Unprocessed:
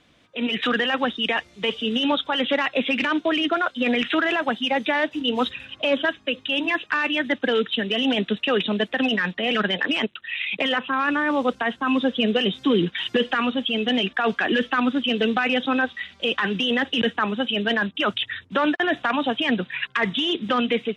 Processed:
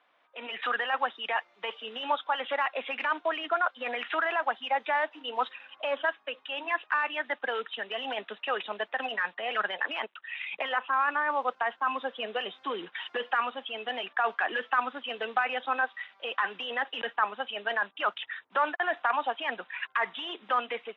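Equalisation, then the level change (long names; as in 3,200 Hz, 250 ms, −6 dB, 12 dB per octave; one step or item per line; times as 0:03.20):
four-pole ladder band-pass 1,100 Hz, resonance 30%
+7.5 dB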